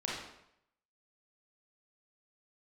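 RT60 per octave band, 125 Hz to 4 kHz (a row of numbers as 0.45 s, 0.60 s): 0.75 s, 0.70 s, 0.75 s, 0.75 s, 0.70 s, 0.65 s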